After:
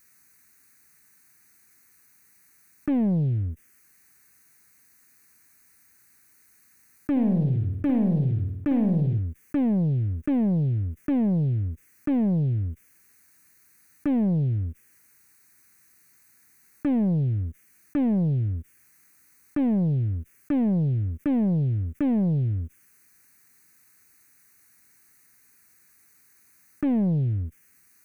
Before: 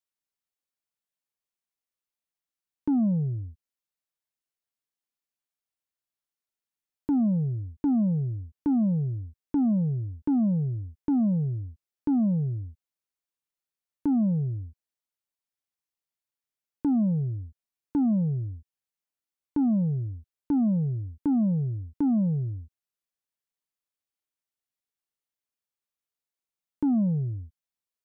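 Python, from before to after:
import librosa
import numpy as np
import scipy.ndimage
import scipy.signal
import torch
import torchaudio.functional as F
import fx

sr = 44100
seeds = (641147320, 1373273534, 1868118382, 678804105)

y = fx.lower_of_two(x, sr, delay_ms=0.48)
y = fx.highpass(y, sr, hz=66.0, slope=6)
y = fx.low_shelf(y, sr, hz=240.0, db=-3.0)
y = fx.leveller(y, sr, passes=2)
y = fx.env_phaser(y, sr, low_hz=590.0, high_hz=1300.0, full_db=-21.5)
y = fx.room_flutter(y, sr, wall_m=9.1, rt60_s=0.51, at=(7.11, 9.19))
y = fx.env_flatten(y, sr, amount_pct=50)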